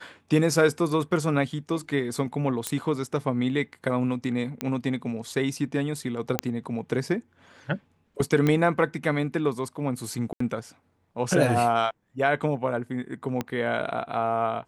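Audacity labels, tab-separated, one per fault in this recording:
2.670000	2.670000	pop -11 dBFS
4.610000	4.610000	pop -12 dBFS
6.390000	6.390000	pop -6 dBFS
8.470000	8.470000	pop -12 dBFS
10.330000	10.400000	gap 74 ms
13.410000	13.410000	pop -14 dBFS

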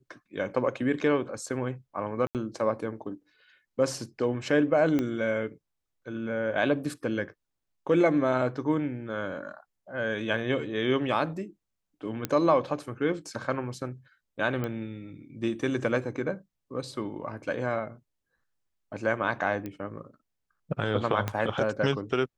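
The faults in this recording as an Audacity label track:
2.270000	2.350000	gap 78 ms
4.990000	4.990000	pop -16 dBFS
12.250000	12.250000	pop -13 dBFS
14.640000	14.640000	pop -19 dBFS
19.660000	19.660000	pop -23 dBFS
21.280000	21.280000	pop -14 dBFS

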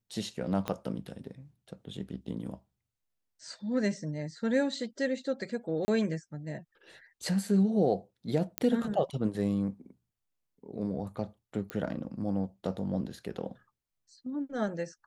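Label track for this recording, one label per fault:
0.680000	0.680000	pop -18 dBFS
5.850000	5.880000	gap 30 ms
8.580000	8.580000	pop -11 dBFS
11.700000	11.700000	pop -20 dBFS

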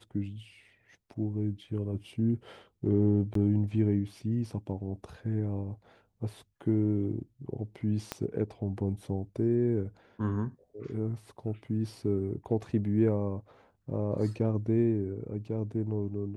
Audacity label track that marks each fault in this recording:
3.340000	3.350000	gap 13 ms
8.120000	8.120000	pop -17 dBFS

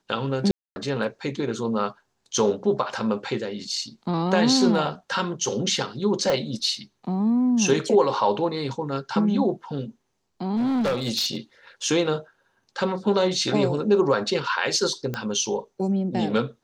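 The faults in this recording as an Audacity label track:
0.510000	0.760000	gap 0.25 s
6.300000	6.300000	pop -11 dBFS
10.560000	11.370000	clipped -20 dBFS
15.140000	15.140000	pop -15 dBFS

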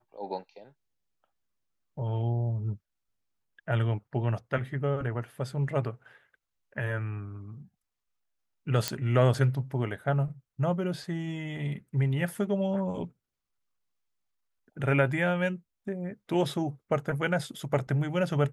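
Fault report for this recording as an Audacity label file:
8.880000	8.880000	pop -10 dBFS

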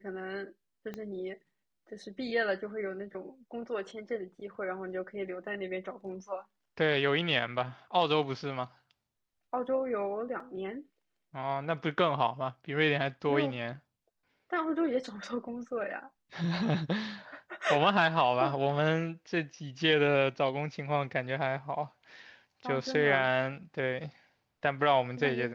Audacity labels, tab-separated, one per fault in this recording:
0.940000	0.940000	pop -26 dBFS
10.400000	10.400000	gap 3.5 ms

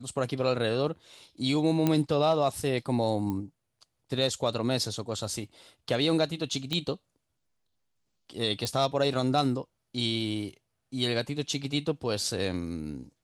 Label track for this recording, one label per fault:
1.870000	1.870000	pop -12 dBFS
3.300000	3.300000	pop -21 dBFS
6.730000	6.730000	pop -16 dBFS
8.650000	8.650000	pop

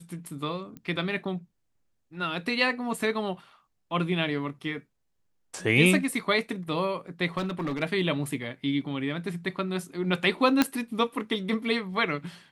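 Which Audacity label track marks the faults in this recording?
0.770000	0.770000	pop -28 dBFS
7.370000	7.830000	clipped -26 dBFS
10.620000	10.620000	pop -6 dBFS

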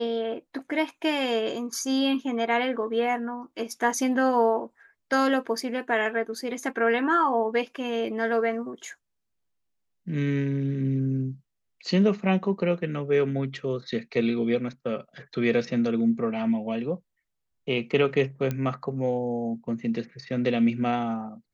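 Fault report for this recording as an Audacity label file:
18.510000	18.510000	pop -16 dBFS

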